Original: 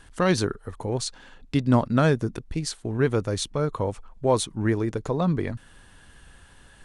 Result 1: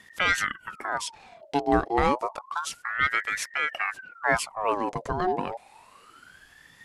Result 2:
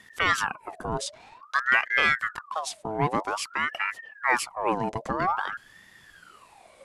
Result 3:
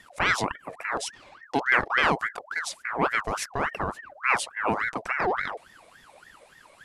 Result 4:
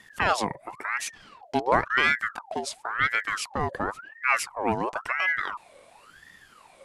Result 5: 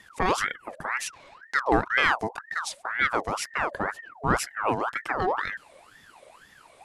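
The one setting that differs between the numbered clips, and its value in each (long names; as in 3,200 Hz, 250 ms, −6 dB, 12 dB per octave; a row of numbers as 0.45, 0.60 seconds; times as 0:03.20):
ring modulator whose carrier an LFO sweeps, at: 0.29, 0.51, 3.5, 0.95, 2 Hertz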